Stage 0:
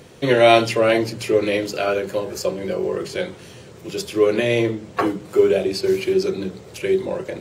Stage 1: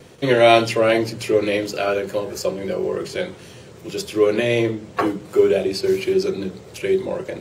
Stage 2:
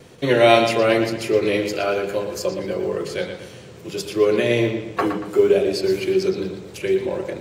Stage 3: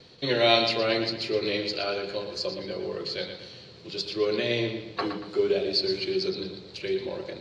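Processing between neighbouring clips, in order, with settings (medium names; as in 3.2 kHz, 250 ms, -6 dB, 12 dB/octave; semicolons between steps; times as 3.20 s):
gate with hold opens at -36 dBFS
short-mantissa float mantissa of 6-bit; bucket-brigade echo 117 ms, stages 4096, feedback 41%, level -8 dB; trim -1 dB
resonant low-pass 4.3 kHz, resonance Q 8; trim -9 dB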